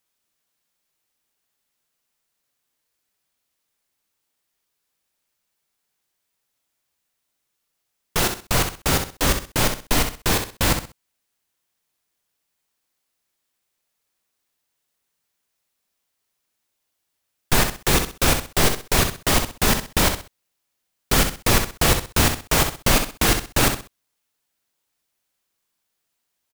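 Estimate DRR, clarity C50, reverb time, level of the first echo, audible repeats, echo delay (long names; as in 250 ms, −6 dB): no reverb audible, no reverb audible, no reverb audible, −7.5 dB, 3, 64 ms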